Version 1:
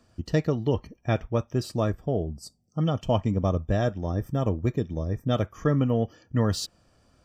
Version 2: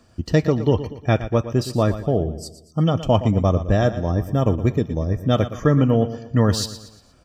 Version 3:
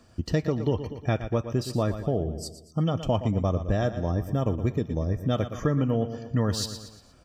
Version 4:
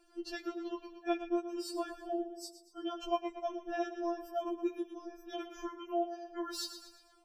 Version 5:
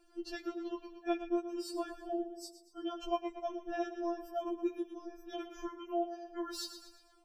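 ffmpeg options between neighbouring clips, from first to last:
ffmpeg -i in.wav -af "aecho=1:1:117|234|351|468:0.224|0.0963|0.0414|0.0178,volume=6.5dB" out.wav
ffmpeg -i in.wav -af "acompressor=threshold=-24dB:ratio=2,volume=-1.5dB" out.wav
ffmpeg -i in.wav -af "afftfilt=real='re*4*eq(mod(b,16),0)':imag='im*4*eq(mod(b,16),0)':win_size=2048:overlap=0.75,volume=-5dB" out.wav
ffmpeg -i in.wav -af "lowshelf=frequency=240:gain=6,volume=-2dB" out.wav

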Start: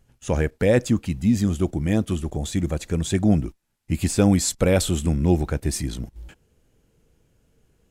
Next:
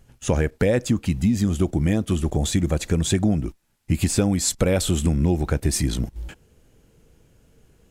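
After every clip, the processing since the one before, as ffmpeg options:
ffmpeg -i in.wav -af "acompressor=threshold=-23dB:ratio=6,volume=6.5dB" out.wav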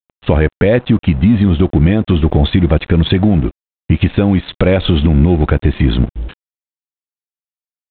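ffmpeg -i in.wav -af "aresample=8000,aeval=exprs='sgn(val(0))*max(abs(val(0))-0.00891,0)':channel_layout=same,aresample=44100,alimiter=level_in=14dB:limit=-1dB:release=50:level=0:latency=1,volume=-1dB" out.wav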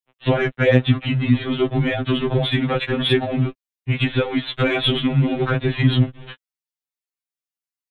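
ffmpeg -i in.wav -filter_complex "[0:a]acrossover=split=300|1300[link_01][link_02][link_03];[link_03]acontrast=54[link_04];[link_01][link_02][link_04]amix=inputs=3:normalize=0,afftfilt=real='re*2.45*eq(mod(b,6),0)':imag='im*2.45*eq(mod(b,6),0)':win_size=2048:overlap=0.75,volume=-2.5dB" out.wav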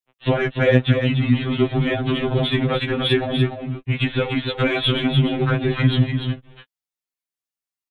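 ffmpeg -i in.wav -af "aecho=1:1:293:0.473,volume=-1dB" out.wav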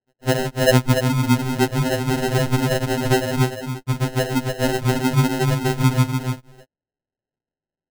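ffmpeg -i in.wav -af "acrusher=samples=38:mix=1:aa=0.000001" out.wav

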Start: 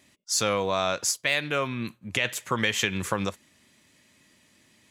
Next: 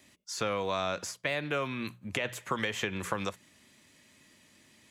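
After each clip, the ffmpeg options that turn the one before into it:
ffmpeg -i in.wav -filter_complex "[0:a]bandreject=frequency=60:width_type=h:width=6,bandreject=frequency=120:width_type=h:width=6,bandreject=frequency=180:width_type=h:width=6,acrossover=split=380|1300|2800[link_01][link_02][link_03][link_04];[link_01]acompressor=threshold=-37dB:ratio=4[link_05];[link_02]acompressor=threshold=-33dB:ratio=4[link_06];[link_03]acompressor=threshold=-37dB:ratio=4[link_07];[link_04]acompressor=threshold=-43dB:ratio=4[link_08];[link_05][link_06][link_07][link_08]amix=inputs=4:normalize=0" out.wav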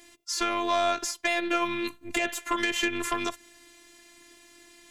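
ffmpeg -i in.wav -af "aeval=exprs='0.188*sin(PI/2*2.24*val(0)/0.188)':channel_layout=same,afftfilt=real='hypot(re,im)*cos(PI*b)':imag='0':win_size=512:overlap=0.75" out.wav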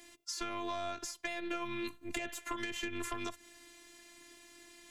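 ffmpeg -i in.wav -filter_complex "[0:a]acrossover=split=200[link_01][link_02];[link_02]acompressor=threshold=-34dB:ratio=5[link_03];[link_01][link_03]amix=inputs=2:normalize=0,volume=-3dB" out.wav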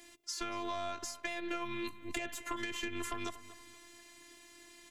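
ffmpeg -i in.wav -filter_complex "[0:a]asplit=2[link_01][link_02];[link_02]adelay=237,lowpass=frequency=3500:poles=1,volume=-14.5dB,asplit=2[link_03][link_04];[link_04]adelay=237,lowpass=frequency=3500:poles=1,volume=0.39,asplit=2[link_05][link_06];[link_06]adelay=237,lowpass=frequency=3500:poles=1,volume=0.39,asplit=2[link_07][link_08];[link_08]adelay=237,lowpass=frequency=3500:poles=1,volume=0.39[link_09];[link_01][link_03][link_05][link_07][link_09]amix=inputs=5:normalize=0" out.wav

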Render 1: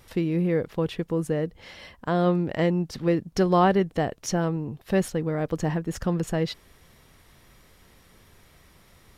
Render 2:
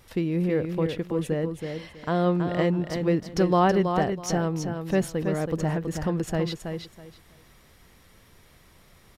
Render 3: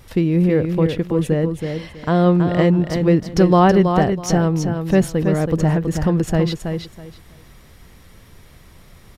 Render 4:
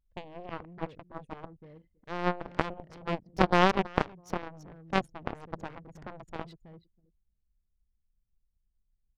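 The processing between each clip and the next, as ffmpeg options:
ffmpeg -i in.wav -af "aecho=1:1:325|650|975:0.473|0.0994|0.0209,volume=-1dB" out.wav
ffmpeg -i in.wav -af "lowshelf=frequency=220:gain=6.5,volume=6dB" out.wav
ffmpeg -i in.wav -af "anlmdn=158,aeval=exprs='0.891*(cos(1*acos(clip(val(0)/0.891,-1,1)))-cos(1*PI/2))+0.355*(cos(3*acos(clip(val(0)/0.891,-1,1)))-cos(3*PI/2))+0.02*(cos(5*acos(clip(val(0)/0.891,-1,1)))-cos(5*PI/2))':channel_layout=same,volume=-3dB" out.wav

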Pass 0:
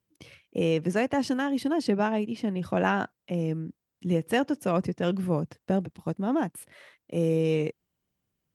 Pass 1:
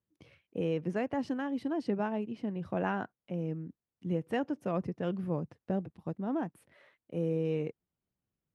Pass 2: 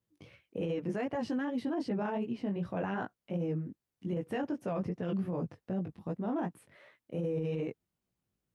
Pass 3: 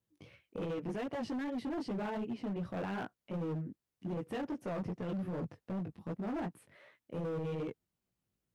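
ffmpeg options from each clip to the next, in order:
ffmpeg -i in.wav -af "lowpass=frequency=1700:poles=1,volume=-6.5dB" out.wav
ffmpeg -i in.wav -af "flanger=delay=16:depth=4.5:speed=2.6,alimiter=level_in=8.5dB:limit=-24dB:level=0:latency=1:release=14,volume=-8.5dB,volume=6dB" out.wav
ffmpeg -i in.wav -af "asoftclip=type=hard:threshold=-32.5dB,volume=-1.5dB" out.wav

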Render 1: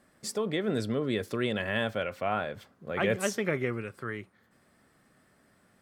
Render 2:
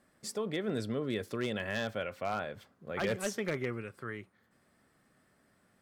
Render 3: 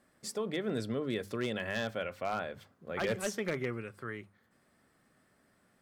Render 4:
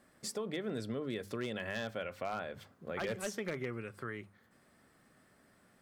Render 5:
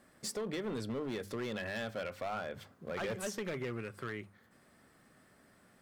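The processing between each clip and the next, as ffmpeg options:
ffmpeg -i in.wav -af "aeval=exprs='0.112*(abs(mod(val(0)/0.112+3,4)-2)-1)':channel_layout=same,volume=-4.5dB" out.wav
ffmpeg -i in.wav -af "bandreject=frequency=50:width_type=h:width=6,bandreject=frequency=100:width_type=h:width=6,bandreject=frequency=150:width_type=h:width=6,bandreject=frequency=200:width_type=h:width=6" out.wav
ffmpeg -i in.wav -af "acompressor=threshold=-43dB:ratio=2,volume=3dB" out.wav
ffmpeg -i in.wav -af "asoftclip=type=hard:threshold=-35dB,volume=2dB" out.wav

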